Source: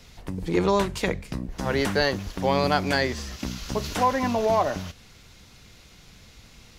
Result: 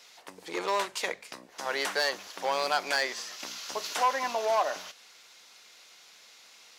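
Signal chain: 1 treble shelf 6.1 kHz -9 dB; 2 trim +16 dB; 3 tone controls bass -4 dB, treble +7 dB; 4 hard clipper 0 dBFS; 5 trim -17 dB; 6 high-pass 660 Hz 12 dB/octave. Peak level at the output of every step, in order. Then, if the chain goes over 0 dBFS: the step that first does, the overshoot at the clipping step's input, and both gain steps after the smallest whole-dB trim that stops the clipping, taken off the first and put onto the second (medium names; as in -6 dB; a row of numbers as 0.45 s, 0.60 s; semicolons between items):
-7.5 dBFS, +8.5 dBFS, +9.0 dBFS, 0.0 dBFS, -17.0 dBFS, -13.0 dBFS; step 2, 9.0 dB; step 2 +7 dB, step 5 -8 dB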